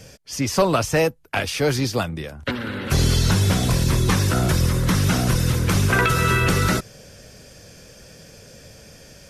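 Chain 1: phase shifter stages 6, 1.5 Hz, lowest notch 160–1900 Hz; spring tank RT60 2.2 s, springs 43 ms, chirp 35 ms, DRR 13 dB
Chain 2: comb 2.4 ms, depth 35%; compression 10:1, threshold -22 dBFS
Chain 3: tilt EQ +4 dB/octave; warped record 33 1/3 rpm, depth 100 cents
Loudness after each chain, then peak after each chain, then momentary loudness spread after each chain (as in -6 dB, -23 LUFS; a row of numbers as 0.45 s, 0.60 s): -22.5 LUFS, -27.0 LUFS, -17.5 LUFS; -8.5 dBFS, -12.0 dBFS, -3.5 dBFS; 11 LU, 18 LU, 21 LU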